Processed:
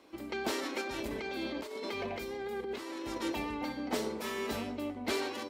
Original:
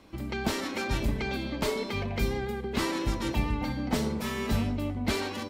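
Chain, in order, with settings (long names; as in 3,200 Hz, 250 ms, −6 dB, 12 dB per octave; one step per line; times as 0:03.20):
high-pass filter 90 Hz 6 dB per octave
low shelf with overshoot 230 Hz −11 dB, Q 1.5
0:00.81–0:03.18: compressor whose output falls as the input rises −35 dBFS, ratio −1
level −3.5 dB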